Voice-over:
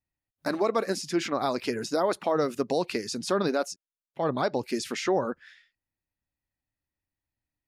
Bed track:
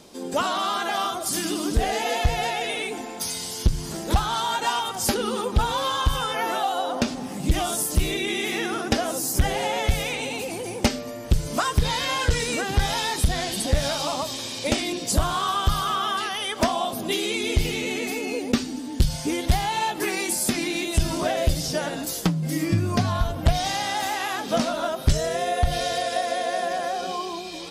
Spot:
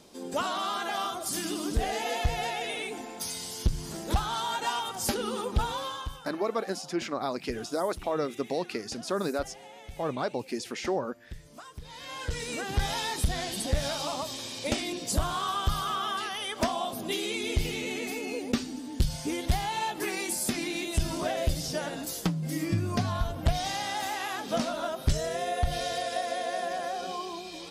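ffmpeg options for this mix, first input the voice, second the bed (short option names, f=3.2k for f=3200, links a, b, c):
-filter_complex "[0:a]adelay=5800,volume=-4dB[a];[1:a]volume=11dB,afade=t=out:st=5.6:d=0.62:silence=0.141254,afade=t=in:st=11.87:d=0.95:silence=0.141254[b];[a][b]amix=inputs=2:normalize=0"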